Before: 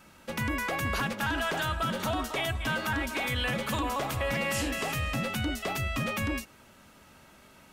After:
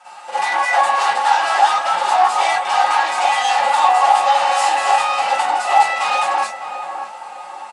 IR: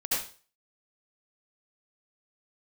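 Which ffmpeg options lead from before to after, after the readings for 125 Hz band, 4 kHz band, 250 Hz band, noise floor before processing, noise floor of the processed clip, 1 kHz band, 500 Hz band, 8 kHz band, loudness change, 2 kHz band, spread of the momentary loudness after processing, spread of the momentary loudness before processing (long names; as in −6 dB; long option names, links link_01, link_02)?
below −20 dB, +10.5 dB, below −10 dB, −56 dBFS, −34 dBFS, +22.0 dB, +10.0 dB, +11.0 dB, +15.0 dB, +10.5 dB, 13 LU, 3 LU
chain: -filter_complex "[0:a]aecho=1:1:5.6:0.71,aeval=exprs='0.133*sin(PI/2*2.82*val(0)/0.133)':channel_layout=same,flanger=delay=3.4:depth=9.8:regen=54:speed=1.1:shape=triangular,highpass=frequency=800:width_type=q:width=8.5,asplit=2[link_01][link_02];[link_02]adelay=606,lowpass=frequency=1100:poles=1,volume=-7dB,asplit=2[link_03][link_04];[link_04]adelay=606,lowpass=frequency=1100:poles=1,volume=0.52,asplit=2[link_05][link_06];[link_06]adelay=606,lowpass=frequency=1100:poles=1,volume=0.52,asplit=2[link_07][link_08];[link_08]adelay=606,lowpass=frequency=1100:poles=1,volume=0.52,asplit=2[link_09][link_10];[link_10]adelay=606,lowpass=frequency=1100:poles=1,volume=0.52,asplit=2[link_11][link_12];[link_12]adelay=606,lowpass=frequency=1100:poles=1,volume=0.52[link_13];[link_01][link_03][link_05][link_07][link_09][link_11][link_13]amix=inputs=7:normalize=0[link_14];[1:a]atrim=start_sample=2205,afade=type=out:start_time=0.2:duration=0.01,atrim=end_sample=9261,asetrate=70560,aresample=44100[link_15];[link_14][link_15]afir=irnorm=-1:irlink=0,aresample=22050,aresample=44100"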